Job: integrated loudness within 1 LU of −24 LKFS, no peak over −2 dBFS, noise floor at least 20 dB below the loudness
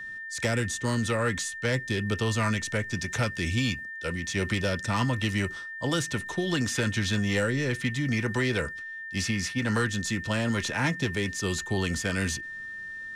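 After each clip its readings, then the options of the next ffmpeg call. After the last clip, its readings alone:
interfering tone 1,800 Hz; level of the tone −36 dBFS; integrated loudness −28.5 LKFS; sample peak −17.0 dBFS; target loudness −24.0 LKFS
→ -af "bandreject=frequency=1800:width=30"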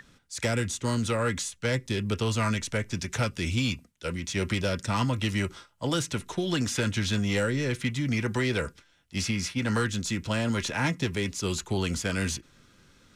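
interfering tone none found; integrated loudness −29.0 LKFS; sample peak −17.0 dBFS; target loudness −24.0 LKFS
→ -af "volume=5dB"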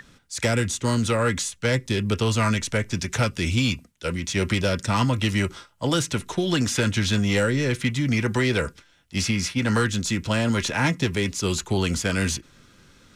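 integrated loudness −24.0 LKFS; sample peak −12.0 dBFS; background noise floor −58 dBFS

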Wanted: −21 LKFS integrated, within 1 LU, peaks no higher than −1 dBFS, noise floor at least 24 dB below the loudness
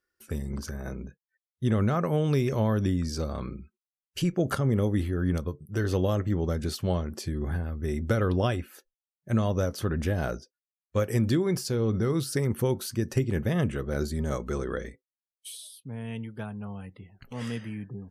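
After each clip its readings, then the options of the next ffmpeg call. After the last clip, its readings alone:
integrated loudness −29.0 LKFS; sample peak −12.5 dBFS; target loudness −21.0 LKFS
→ -af "volume=8dB"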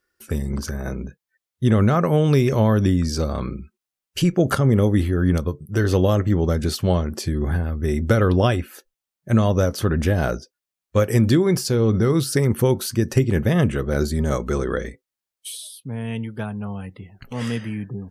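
integrated loudness −21.0 LKFS; sample peak −4.5 dBFS; background noise floor −88 dBFS

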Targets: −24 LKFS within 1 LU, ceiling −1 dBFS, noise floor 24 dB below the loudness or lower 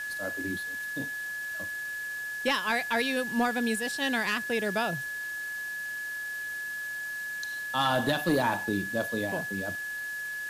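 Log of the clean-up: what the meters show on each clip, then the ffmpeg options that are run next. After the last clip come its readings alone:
interfering tone 1,700 Hz; level of the tone −33 dBFS; background noise floor −36 dBFS; target noise floor −54 dBFS; integrated loudness −30.0 LKFS; sample peak −17.0 dBFS; target loudness −24.0 LKFS
→ -af "bandreject=frequency=1700:width=30"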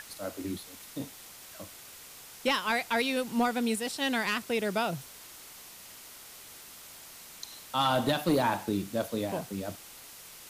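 interfering tone none found; background noise floor −49 dBFS; target noise floor −55 dBFS
→ -af "afftdn=noise_reduction=6:noise_floor=-49"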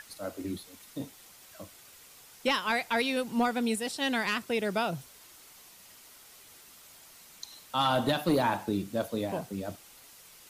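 background noise floor −54 dBFS; target noise floor −55 dBFS
→ -af "afftdn=noise_reduction=6:noise_floor=-54"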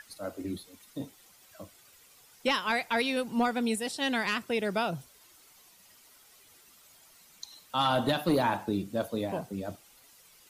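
background noise floor −59 dBFS; integrated loudness −30.5 LKFS; sample peak −18.0 dBFS; target loudness −24.0 LKFS
→ -af "volume=6.5dB"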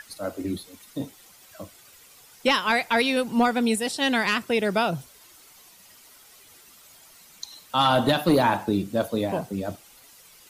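integrated loudness −24.0 LKFS; sample peak −11.5 dBFS; background noise floor −52 dBFS

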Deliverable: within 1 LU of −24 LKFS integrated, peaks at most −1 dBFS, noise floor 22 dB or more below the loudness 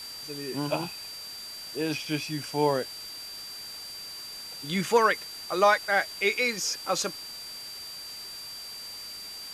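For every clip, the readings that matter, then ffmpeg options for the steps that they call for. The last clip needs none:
interfering tone 4,700 Hz; level of the tone −39 dBFS; background noise floor −41 dBFS; target noise floor −52 dBFS; integrated loudness −29.5 LKFS; sample peak −9.0 dBFS; target loudness −24.0 LKFS
→ -af "bandreject=frequency=4700:width=30"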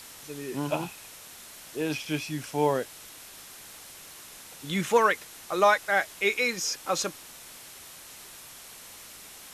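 interfering tone none found; background noise floor −47 dBFS; target noise floor −50 dBFS
→ -af "afftdn=noise_reduction=6:noise_floor=-47"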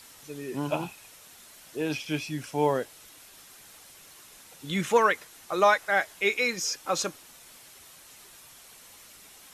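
background noise floor −52 dBFS; integrated loudness −27.5 LKFS; sample peak −9.0 dBFS; target loudness −24.0 LKFS
→ -af "volume=3.5dB"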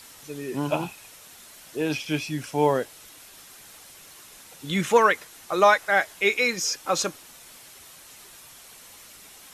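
integrated loudness −24.0 LKFS; sample peak −5.5 dBFS; background noise floor −48 dBFS

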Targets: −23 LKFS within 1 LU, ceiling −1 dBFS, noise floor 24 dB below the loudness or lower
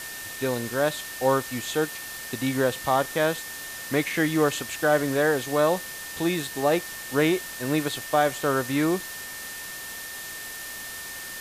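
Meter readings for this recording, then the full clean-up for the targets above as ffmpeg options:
interfering tone 1,800 Hz; level of the tone −39 dBFS; background noise floor −37 dBFS; target noise floor −51 dBFS; integrated loudness −26.5 LKFS; sample peak −8.5 dBFS; target loudness −23.0 LKFS
→ -af "bandreject=frequency=1800:width=30"
-af "afftdn=noise_reduction=14:noise_floor=-37"
-af "volume=3.5dB"

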